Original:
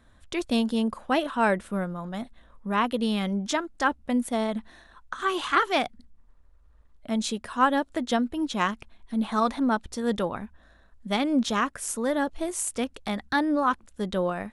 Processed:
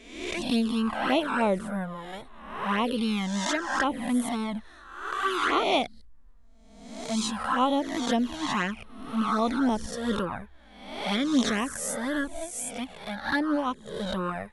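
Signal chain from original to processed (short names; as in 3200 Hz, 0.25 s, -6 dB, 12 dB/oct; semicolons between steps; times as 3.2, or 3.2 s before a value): spectral swells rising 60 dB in 0.86 s; envelope flanger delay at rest 4.8 ms, full sweep at -17 dBFS; 12.21–13.86 upward expander 1.5:1, over -35 dBFS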